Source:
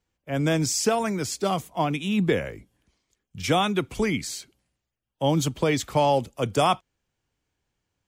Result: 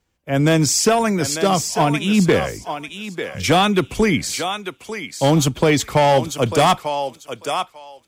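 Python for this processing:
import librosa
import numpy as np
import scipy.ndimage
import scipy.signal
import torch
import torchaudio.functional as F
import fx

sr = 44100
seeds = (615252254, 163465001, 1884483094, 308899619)

y = fx.echo_thinned(x, sr, ms=895, feedback_pct=19, hz=630.0, wet_db=-7)
y = fx.clip_asym(y, sr, top_db=-18.0, bottom_db=-15.0)
y = F.gain(torch.from_numpy(y), 8.0).numpy()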